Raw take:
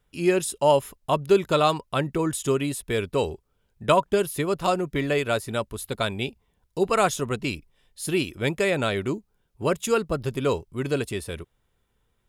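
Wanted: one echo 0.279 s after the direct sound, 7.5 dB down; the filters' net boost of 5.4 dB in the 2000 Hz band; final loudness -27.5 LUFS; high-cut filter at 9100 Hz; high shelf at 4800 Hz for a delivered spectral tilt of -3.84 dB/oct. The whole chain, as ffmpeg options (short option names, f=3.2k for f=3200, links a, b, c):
-af "lowpass=9.1k,equalizer=f=2k:t=o:g=8.5,highshelf=f=4.8k:g=-6.5,aecho=1:1:279:0.422,volume=-4dB"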